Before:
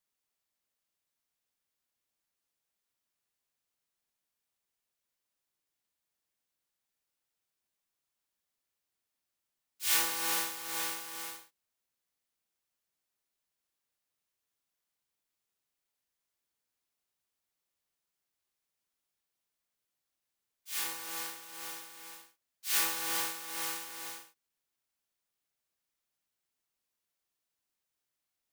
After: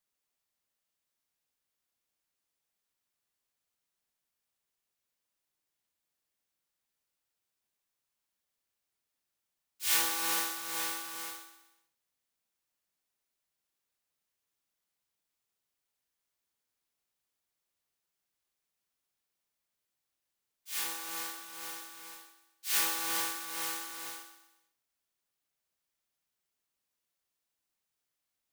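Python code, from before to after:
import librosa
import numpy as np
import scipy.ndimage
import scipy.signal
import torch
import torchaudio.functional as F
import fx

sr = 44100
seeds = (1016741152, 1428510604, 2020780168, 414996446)

y = fx.echo_feedback(x, sr, ms=124, feedback_pct=43, wet_db=-11)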